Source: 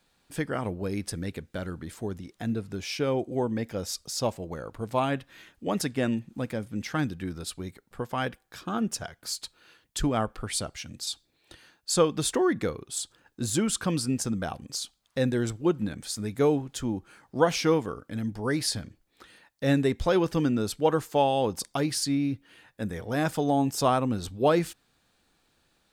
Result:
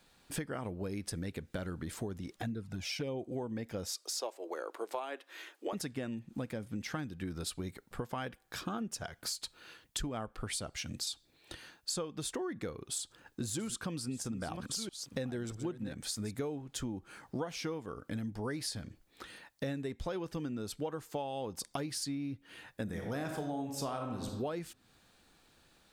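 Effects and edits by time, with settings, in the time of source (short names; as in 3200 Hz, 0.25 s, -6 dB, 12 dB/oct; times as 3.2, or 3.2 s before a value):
2.36–3.21 envelope flanger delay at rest 3.6 ms, full sweep at -22.5 dBFS
3.88–5.73 elliptic high-pass 340 Hz, stop band 80 dB
12.92–16.31 reverse delay 0.657 s, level -12 dB
22.83–24.26 reverb throw, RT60 0.86 s, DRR 3 dB
whole clip: compressor 10:1, threshold -38 dBFS; gain +3 dB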